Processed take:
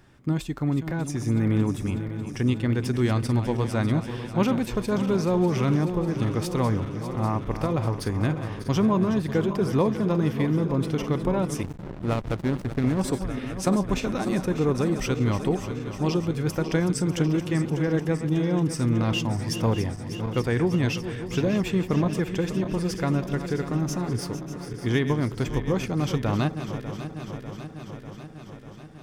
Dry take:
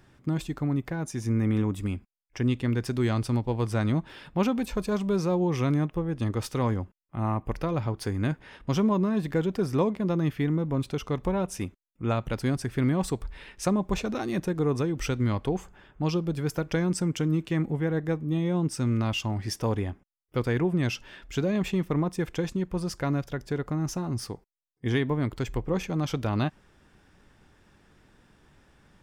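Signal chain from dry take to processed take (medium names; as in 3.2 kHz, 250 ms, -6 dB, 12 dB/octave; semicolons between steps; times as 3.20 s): backward echo that repeats 298 ms, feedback 82%, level -11 dB; 11.63–13.01 s: hysteresis with a dead band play -25.5 dBFS; trim +2 dB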